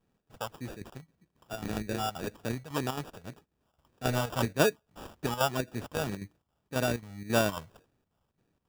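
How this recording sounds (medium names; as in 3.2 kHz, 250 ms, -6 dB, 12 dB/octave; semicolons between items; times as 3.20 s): chopped level 3.7 Hz, depth 60%, duty 75%; phasing stages 4, 1.8 Hz, lowest notch 310–1700 Hz; aliases and images of a low sample rate 2.1 kHz, jitter 0%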